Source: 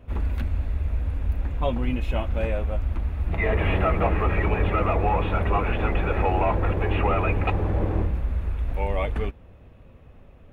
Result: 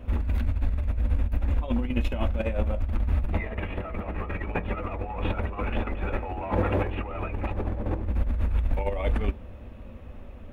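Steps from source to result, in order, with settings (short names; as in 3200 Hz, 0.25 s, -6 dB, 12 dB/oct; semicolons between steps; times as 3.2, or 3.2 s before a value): 6.41–6.84 HPF 82 Hz 12 dB/oct; negative-ratio compressor -27 dBFS, ratio -0.5; on a send: reverb RT60 0.20 s, pre-delay 3 ms, DRR 13 dB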